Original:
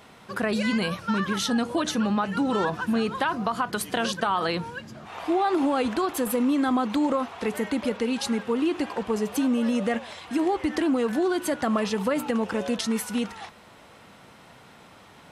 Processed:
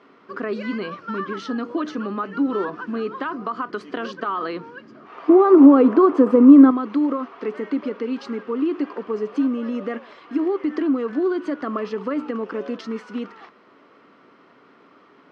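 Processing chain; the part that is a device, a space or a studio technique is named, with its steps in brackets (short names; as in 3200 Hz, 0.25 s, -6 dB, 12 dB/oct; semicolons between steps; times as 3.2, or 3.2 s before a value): 5.29–6.71 ten-band EQ 125 Hz +9 dB, 250 Hz +8 dB, 500 Hz +9 dB, 1000 Hz +7 dB, 4000 Hz -4 dB; kitchen radio (speaker cabinet 220–4400 Hz, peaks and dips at 280 Hz +10 dB, 400 Hz +9 dB, 810 Hz -6 dB, 1200 Hz +8 dB, 2600 Hz -3 dB, 3700 Hz -9 dB); gain -4 dB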